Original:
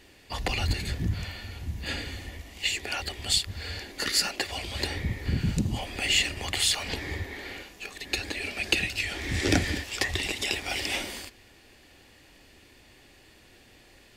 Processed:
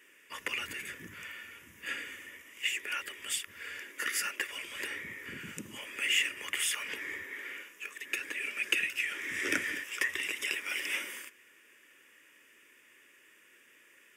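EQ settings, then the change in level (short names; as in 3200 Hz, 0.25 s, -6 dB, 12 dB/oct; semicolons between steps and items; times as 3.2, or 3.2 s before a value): HPF 540 Hz 12 dB/oct; dynamic EQ 7300 Hz, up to -4 dB, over -49 dBFS, Q 4.5; fixed phaser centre 1800 Hz, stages 4; 0.0 dB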